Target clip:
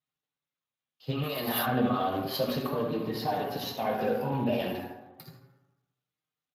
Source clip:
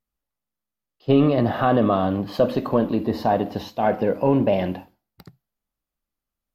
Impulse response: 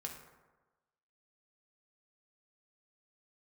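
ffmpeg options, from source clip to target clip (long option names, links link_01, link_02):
-filter_complex "[0:a]alimiter=limit=-15dB:level=0:latency=1:release=91,asplit=3[link_01][link_02][link_03];[link_01]afade=type=out:start_time=2.82:duration=0.02[link_04];[link_02]highshelf=frequency=4600:gain=-6.5,afade=type=in:start_time=2.82:duration=0.02,afade=type=out:start_time=3.25:duration=0.02[link_05];[link_03]afade=type=in:start_time=3.25:duration=0.02[link_06];[link_04][link_05][link_06]amix=inputs=3:normalize=0,asplit=3[link_07][link_08][link_09];[link_07]afade=type=out:start_time=3.9:duration=0.02[link_10];[link_08]asuperstop=centerf=2100:order=8:qfactor=7.3,afade=type=in:start_time=3.9:duration=0.02,afade=type=out:start_time=4.69:duration=0.02[link_11];[link_09]afade=type=in:start_time=4.69:duration=0.02[link_12];[link_10][link_11][link_12]amix=inputs=3:normalize=0,asplit=2[link_13][link_14];[link_14]adelay=78,lowpass=frequency=3100:poles=1,volume=-7dB,asplit=2[link_15][link_16];[link_16]adelay=78,lowpass=frequency=3100:poles=1,volume=0.27,asplit=2[link_17][link_18];[link_18]adelay=78,lowpass=frequency=3100:poles=1,volume=0.27[link_19];[link_13][link_15][link_17][link_19]amix=inputs=4:normalize=0[link_20];[1:a]atrim=start_sample=2205[link_21];[link_20][link_21]afir=irnorm=-1:irlink=0,crystalizer=i=6.5:c=0,asplit=3[link_22][link_23][link_24];[link_22]afade=type=out:start_time=1.22:duration=0.02[link_25];[link_23]aemphasis=mode=production:type=riaa,afade=type=in:start_time=1.22:duration=0.02,afade=type=out:start_time=1.65:duration=0.02[link_26];[link_24]afade=type=in:start_time=1.65:duration=0.02[link_27];[link_25][link_26][link_27]amix=inputs=3:normalize=0,flanger=delay=6.4:depth=2.2:regen=-9:speed=0.32:shape=triangular,volume=-1.5dB" -ar 32000 -c:a libspeex -b:a 24k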